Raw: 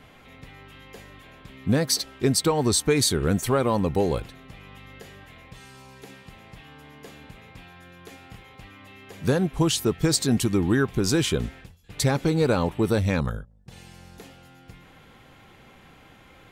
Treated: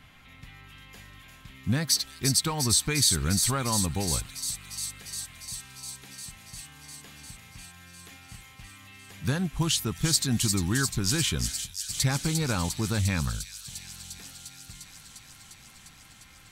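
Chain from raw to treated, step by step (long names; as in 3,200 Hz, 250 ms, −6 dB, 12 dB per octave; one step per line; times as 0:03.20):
parametric band 460 Hz −14.5 dB 1.6 octaves
on a send: delay with a high-pass on its return 351 ms, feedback 80%, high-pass 5,000 Hz, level −3 dB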